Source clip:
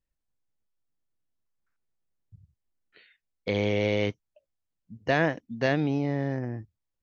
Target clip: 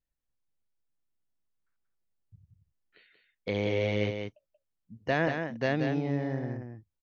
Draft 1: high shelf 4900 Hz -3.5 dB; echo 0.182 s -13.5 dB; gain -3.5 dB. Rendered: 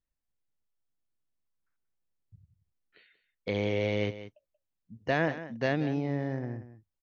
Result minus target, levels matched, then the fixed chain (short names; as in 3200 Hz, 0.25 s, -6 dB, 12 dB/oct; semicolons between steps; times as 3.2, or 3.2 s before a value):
echo-to-direct -7.5 dB
high shelf 4900 Hz -3.5 dB; echo 0.182 s -6 dB; gain -3.5 dB